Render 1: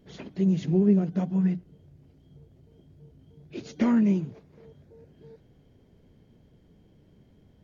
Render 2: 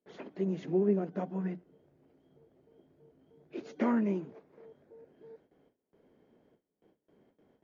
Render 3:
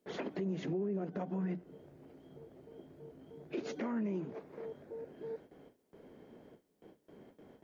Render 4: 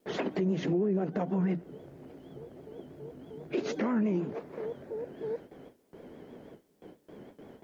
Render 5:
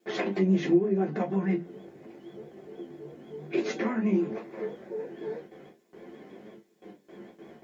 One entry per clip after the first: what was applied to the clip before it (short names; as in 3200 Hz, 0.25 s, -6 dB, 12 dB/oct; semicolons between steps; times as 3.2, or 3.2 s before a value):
gate with hold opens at -49 dBFS; three-band isolator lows -23 dB, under 260 Hz, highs -13 dB, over 2100 Hz
compressor 2.5:1, threshold -43 dBFS, peak gain reduction 13.5 dB; limiter -38.5 dBFS, peak gain reduction 9.5 dB; gain +9.5 dB
vibrato 6.2 Hz 92 cents; gain +7.5 dB
flange 0.45 Hz, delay 8.7 ms, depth 4.9 ms, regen +49%; reverb, pre-delay 3 ms, DRR -0.5 dB